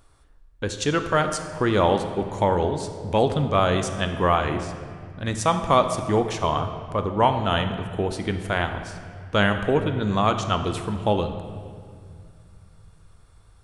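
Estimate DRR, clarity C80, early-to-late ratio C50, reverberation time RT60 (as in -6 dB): 7.0 dB, 9.5 dB, 8.5 dB, 2.2 s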